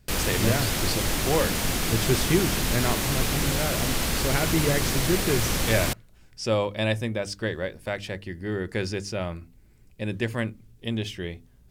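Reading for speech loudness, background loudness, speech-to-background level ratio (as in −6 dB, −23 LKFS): −29.0 LKFS, −25.5 LKFS, −3.5 dB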